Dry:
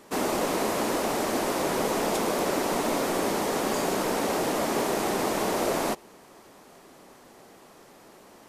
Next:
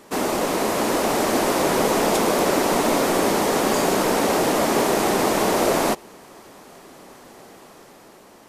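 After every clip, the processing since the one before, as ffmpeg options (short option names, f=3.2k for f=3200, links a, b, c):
-af "dynaudnorm=f=200:g=9:m=3dB,volume=4dB"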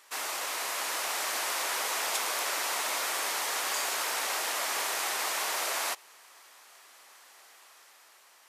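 -af "highpass=1.4k,volume=-4dB"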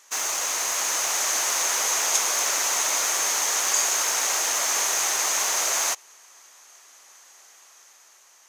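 -filter_complex "[0:a]asplit=2[a][b];[b]acrusher=bits=5:mix=0:aa=0.000001,volume=-5.5dB[c];[a][c]amix=inputs=2:normalize=0,equalizer=f=6.4k:t=o:w=0.32:g=15"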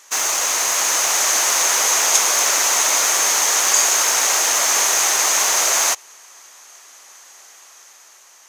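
-af "highpass=41,volume=7dB"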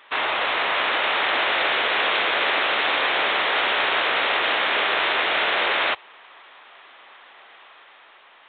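-af "afftfilt=real='re*lt(hypot(re,im),0.251)':imag='im*lt(hypot(re,im),0.251)':win_size=1024:overlap=0.75,volume=3dB" -ar 8000 -c:a pcm_alaw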